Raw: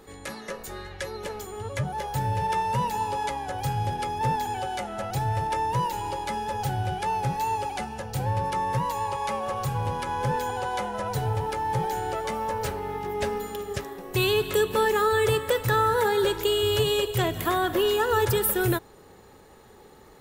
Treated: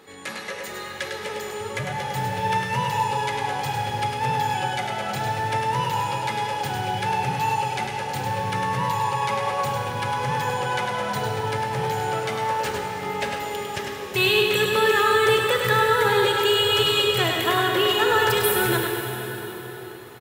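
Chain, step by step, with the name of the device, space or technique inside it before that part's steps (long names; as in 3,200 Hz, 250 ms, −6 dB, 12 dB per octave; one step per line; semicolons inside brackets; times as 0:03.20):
PA in a hall (high-pass filter 120 Hz 12 dB per octave; parametric band 2,500 Hz +8 dB 2 octaves; single-tap delay 102 ms −5.5 dB; convolution reverb RT60 4.2 s, pre-delay 24 ms, DRR 2 dB)
level −1.5 dB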